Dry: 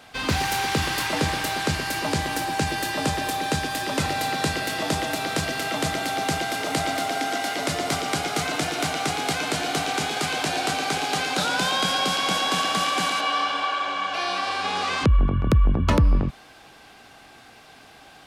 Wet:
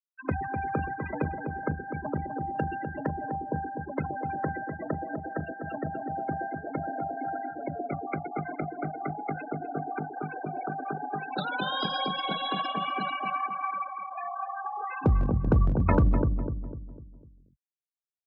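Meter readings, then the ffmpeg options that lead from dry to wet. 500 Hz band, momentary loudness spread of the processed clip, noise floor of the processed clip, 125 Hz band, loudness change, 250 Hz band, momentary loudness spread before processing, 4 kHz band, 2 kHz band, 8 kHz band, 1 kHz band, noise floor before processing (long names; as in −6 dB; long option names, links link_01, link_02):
−5.5 dB, 10 LU, −66 dBFS, −3.5 dB, −7.5 dB, −4.0 dB, 5 LU, −13.5 dB, −11.5 dB, below −40 dB, −6.0 dB, −49 dBFS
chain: -filter_complex "[0:a]afwtdn=0.0355,aeval=exprs='0.316*(cos(1*acos(clip(val(0)/0.316,-1,1)))-cos(1*PI/2))+0.0562*(cos(3*acos(clip(val(0)/0.316,-1,1)))-cos(3*PI/2))':channel_layout=same,afftfilt=real='re*gte(hypot(re,im),0.0708)':imag='im*gte(hypot(re,im),0.0708)':win_size=1024:overlap=0.75,acrossover=split=700|1200[link_01][link_02][link_03];[link_01]aeval=exprs='clip(val(0),-1,0.119)':channel_layout=same[link_04];[link_04][link_02][link_03]amix=inputs=3:normalize=0,highpass=49,asplit=2[link_05][link_06];[link_06]adelay=250,lowpass=frequency=900:poles=1,volume=-5.5dB,asplit=2[link_07][link_08];[link_08]adelay=250,lowpass=frequency=900:poles=1,volume=0.45,asplit=2[link_09][link_10];[link_10]adelay=250,lowpass=frequency=900:poles=1,volume=0.45,asplit=2[link_11][link_12];[link_12]adelay=250,lowpass=frequency=900:poles=1,volume=0.45,asplit=2[link_13][link_14];[link_14]adelay=250,lowpass=frequency=900:poles=1,volume=0.45[link_15];[link_07][link_09][link_11][link_13][link_15]amix=inputs=5:normalize=0[link_16];[link_05][link_16]amix=inputs=2:normalize=0"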